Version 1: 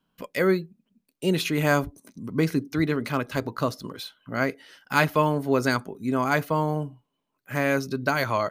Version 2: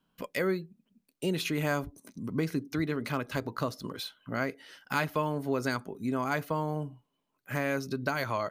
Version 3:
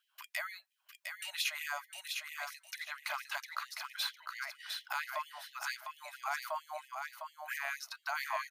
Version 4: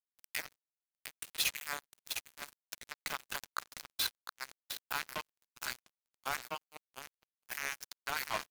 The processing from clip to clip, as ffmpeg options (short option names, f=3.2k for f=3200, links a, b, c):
-af "acompressor=threshold=-30dB:ratio=2,volume=-1dB"
-filter_complex "[0:a]alimiter=level_in=0.5dB:limit=-24dB:level=0:latency=1:release=211,volume=-0.5dB,asplit=2[a][b];[b]aecho=0:1:706|1412|2118:0.562|0.118|0.0248[c];[a][c]amix=inputs=2:normalize=0,afftfilt=real='re*gte(b*sr/1024,570*pow(1800/570,0.5+0.5*sin(2*PI*4.4*pts/sr)))':imag='im*gte(b*sr/1024,570*pow(1800/570,0.5+0.5*sin(2*PI*4.4*pts/sr)))':win_size=1024:overlap=0.75,volume=2.5dB"
-filter_complex "[0:a]crystalizer=i=1:c=0,asplit=2[a][b];[b]adelay=90,highpass=300,lowpass=3.4k,asoftclip=type=hard:threshold=-27.5dB,volume=-8dB[c];[a][c]amix=inputs=2:normalize=0,acrusher=bits=4:mix=0:aa=0.5"